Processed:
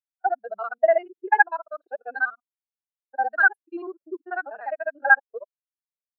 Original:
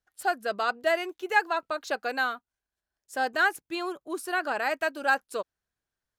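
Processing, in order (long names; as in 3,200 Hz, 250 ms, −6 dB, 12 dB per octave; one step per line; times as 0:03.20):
reversed piece by piece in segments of 49 ms
low-pass that shuts in the quiet parts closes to 1,300 Hz, open at −22 dBFS
every bin expanded away from the loudest bin 2.5 to 1
level +7 dB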